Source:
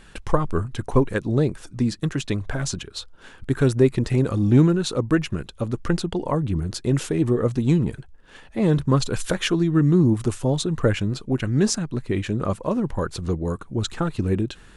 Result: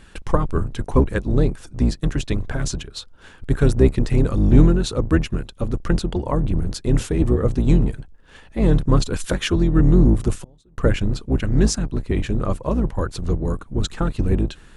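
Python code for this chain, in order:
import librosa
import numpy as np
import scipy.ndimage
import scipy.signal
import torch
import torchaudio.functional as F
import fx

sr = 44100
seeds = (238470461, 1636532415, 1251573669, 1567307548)

y = fx.octave_divider(x, sr, octaves=2, level_db=3.0)
y = fx.gate_flip(y, sr, shuts_db=-23.0, range_db=-33, at=(10.38, 10.78))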